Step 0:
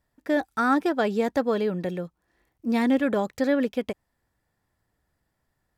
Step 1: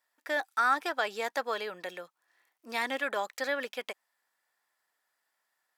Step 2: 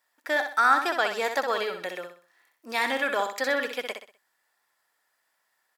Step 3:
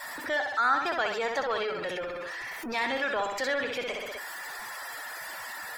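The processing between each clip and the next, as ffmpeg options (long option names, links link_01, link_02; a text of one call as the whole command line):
ffmpeg -i in.wav -filter_complex "[0:a]highpass=980,asplit=2[link_01][link_02];[link_02]alimiter=limit=-22dB:level=0:latency=1:release=121,volume=-2.5dB[link_03];[link_01][link_03]amix=inputs=2:normalize=0,volume=-3dB" out.wav
ffmpeg -i in.wav -af "aecho=1:1:63|126|189|252:0.447|0.161|0.0579|0.0208,volume=5dB" out.wav
ffmpeg -i in.wav -af "aeval=exprs='val(0)+0.5*0.0668*sgn(val(0))':channel_layout=same,afftdn=noise_reduction=29:noise_floor=-35,volume=-6.5dB" out.wav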